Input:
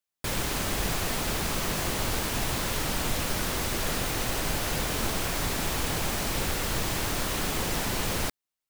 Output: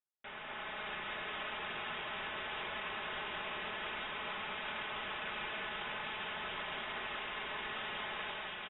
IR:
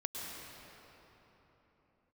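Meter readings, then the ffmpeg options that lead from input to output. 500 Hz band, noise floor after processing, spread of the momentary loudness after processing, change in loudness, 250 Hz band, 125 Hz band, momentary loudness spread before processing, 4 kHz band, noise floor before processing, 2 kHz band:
−12.5 dB, −47 dBFS, 1 LU, −11.5 dB, −19.0 dB, −25.0 dB, 0 LU, −10.0 dB, below −85 dBFS, −5.5 dB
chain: -filter_complex "[0:a]aderivative,aecho=1:1:4.6:0.51,aecho=1:1:681:0.422[link_01];[1:a]atrim=start_sample=2205,asetrate=28224,aresample=44100[link_02];[link_01][link_02]afir=irnorm=-1:irlink=0,lowpass=frequency=3300:width_type=q:width=0.5098,lowpass=frequency=3300:width_type=q:width=0.6013,lowpass=frequency=3300:width_type=q:width=0.9,lowpass=frequency=3300:width_type=q:width=2.563,afreqshift=-3900"

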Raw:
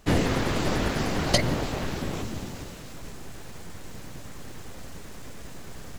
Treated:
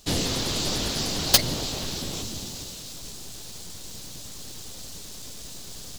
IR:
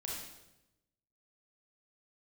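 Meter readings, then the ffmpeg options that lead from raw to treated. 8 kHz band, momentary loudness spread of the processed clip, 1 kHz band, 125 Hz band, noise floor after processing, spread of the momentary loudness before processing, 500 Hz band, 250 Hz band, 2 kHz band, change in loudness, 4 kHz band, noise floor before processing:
+9.5 dB, 19 LU, −4.5 dB, −4.0 dB, −40 dBFS, 19 LU, −4.5 dB, −4.5 dB, −3.5 dB, +1.5 dB, +7.5 dB, −40 dBFS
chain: -af "highshelf=frequency=2800:width_type=q:width=1.5:gain=12,aeval=exprs='1.58*(cos(1*acos(clip(val(0)/1.58,-1,1)))-cos(1*PI/2))+0.501*(cos(7*acos(clip(val(0)/1.58,-1,1)))-cos(7*PI/2))':channel_layout=same,volume=-5dB"

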